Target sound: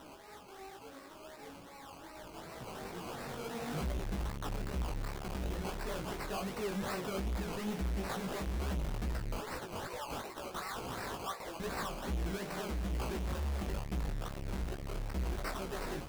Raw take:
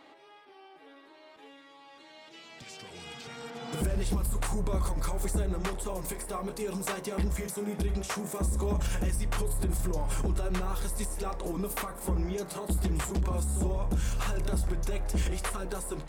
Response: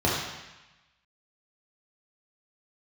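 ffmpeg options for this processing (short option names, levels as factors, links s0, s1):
-filter_complex "[0:a]asettb=1/sr,asplit=3[s0][s1][s2];[s0]atrim=end=9.364[s3];[s1]atrim=start=9.36:end=11.6,asetpts=PTS-STARTPTS,afade=t=in:d=0.004:c=qsin,afade=t=out:st=2.236:d=0.004:c=qsin,highpass=870[s4];[s2]atrim=start=11.596[s5];[s3][s4]acrossfade=d=0.004:c1=hsin:c2=qsin[s6];[s6][s5]acrossfade=d=0.004:c1=qsin:c2=hsin,acrusher=samples=19:mix=1:aa=0.000001:lfo=1:lforange=11.4:lforate=2.7,asoftclip=type=tanh:threshold=0.0126,flanger=delay=15.5:depth=5.4:speed=2.3,volume=2"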